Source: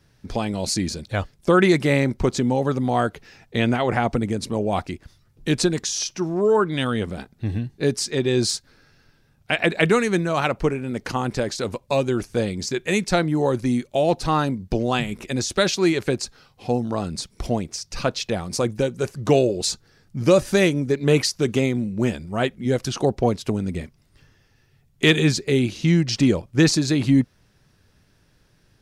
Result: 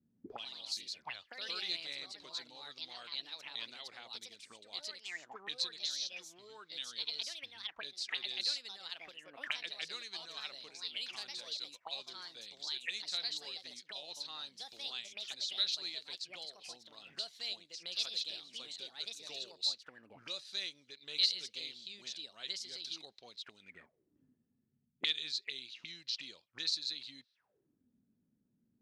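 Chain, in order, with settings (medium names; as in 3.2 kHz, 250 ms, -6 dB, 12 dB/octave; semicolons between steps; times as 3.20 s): ever faster or slower copies 133 ms, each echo +3 st, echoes 2; auto-wah 220–4000 Hz, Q 8, up, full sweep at -19 dBFS; trim -2 dB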